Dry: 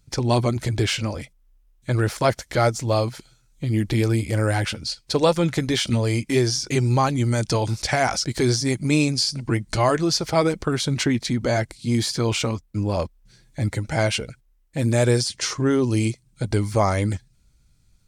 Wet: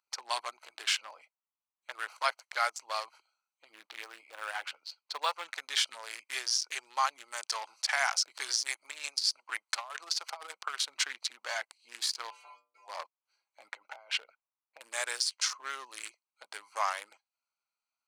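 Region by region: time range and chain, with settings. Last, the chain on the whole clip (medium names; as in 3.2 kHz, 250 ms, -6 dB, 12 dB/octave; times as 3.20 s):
3.71–5.44 s: de-esser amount 35% + low-pass 3.5 kHz 6 dB/octave + companded quantiser 8-bit
8.64–10.75 s: high-pass 200 Hz 6 dB/octave + bass shelf 310 Hz -6 dB + compressor with a negative ratio -24 dBFS, ratio -0.5
12.29–12.87 s: spectral peaks clipped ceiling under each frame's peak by 23 dB + peaking EQ 1.2 kHz -7.5 dB 0.32 oct + inharmonic resonator 88 Hz, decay 0.57 s, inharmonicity 0.008
13.68–14.81 s: low-pass 5.3 kHz + treble shelf 3.4 kHz -7.5 dB + compressor with a negative ratio -26 dBFS, ratio -0.5
whole clip: local Wiener filter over 25 samples; high-pass 1 kHz 24 dB/octave; trim -2 dB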